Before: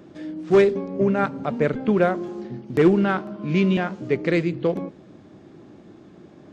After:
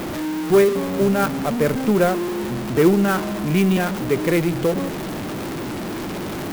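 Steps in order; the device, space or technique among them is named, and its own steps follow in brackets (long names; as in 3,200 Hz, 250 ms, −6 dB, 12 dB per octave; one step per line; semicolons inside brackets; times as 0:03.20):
early CD player with a faulty converter (converter with a step at zero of −22.5 dBFS; converter with an unsteady clock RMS 0.028 ms)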